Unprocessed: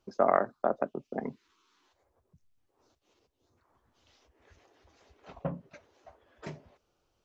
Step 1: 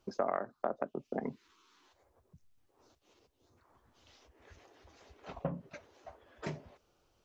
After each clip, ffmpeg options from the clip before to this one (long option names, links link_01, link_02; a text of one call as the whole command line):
ffmpeg -i in.wav -af "acompressor=threshold=-36dB:ratio=3,volume=3dB" out.wav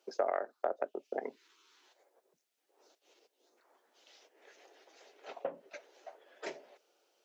ffmpeg -i in.wav -af "highpass=frequency=380:width=0.5412,highpass=frequency=380:width=1.3066,equalizer=frequency=1100:width_type=o:width=0.51:gain=-8,volume=2.5dB" out.wav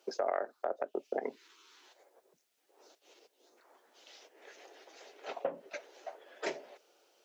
ffmpeg -i in.wav -af "alimiter=level_in=2.5dB:limit=-24dB:level=0:latency=1:release=159,volume=-2.5dB,volume=5.5dB" out.wav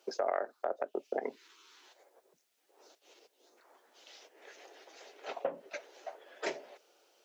ffmpeg -i in.wav -af "lowshelf=frequency=350:gain=-2.5,volume=1dB" out.wav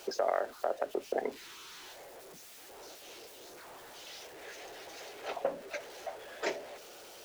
ffmpeg -i in.wav -af "aeval=exprs='val(0)+0.5*0.00398*sgn(val(0))':channel_layout=same,volume=1.5dB" out.wav